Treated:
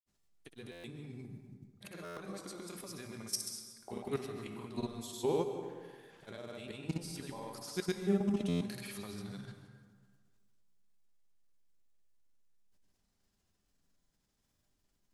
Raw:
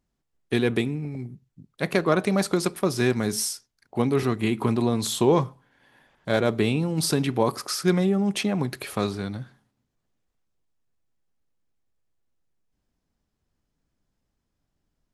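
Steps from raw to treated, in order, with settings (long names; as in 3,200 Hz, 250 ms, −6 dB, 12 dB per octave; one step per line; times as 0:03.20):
high-shelf EQ 2,800 Hz +9.5 dB
hum removal 62.77 Hz, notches 3
downward compressor 2 to 1, threshold −38 dBFS, peak gain reduction 13 dB
brickwall limiter −22.5 dBFS, peak gain reduction 6.5 dB
output level in coarse steps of 16 dB
tuned comb filter 200 Hz, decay 0.65 s, harmonics all, mix 70%
granular cloud, pitch spread up and down by 0 semitones
dense smooth reverb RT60 1.6 s, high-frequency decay 0.55×, pre-delay 115 ms, DRR 7.5 dB
buffer that repeats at 0:00.71/0:02.04/0:08.48, samples 512, times 10
level +11.5 dB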